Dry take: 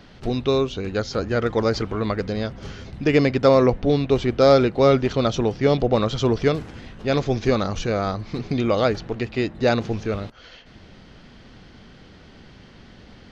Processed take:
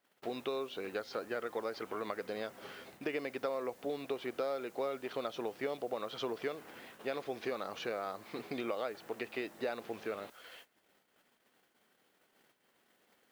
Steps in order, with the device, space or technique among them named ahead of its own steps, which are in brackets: baby monitor (BPF 440–3400 Hz; compressor, threshold -28 dBFS, peak gain reduction 15.5 dB; white noise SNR 24 dB; gate -49 dBFS, range -23 dB); gain -6 dB

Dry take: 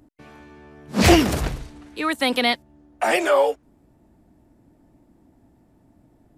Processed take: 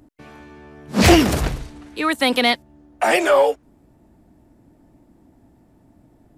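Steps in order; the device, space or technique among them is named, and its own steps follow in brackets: parallel distortion (in parallel at -7 dB: hard clip -14 dBFS, distortion -10 dB)

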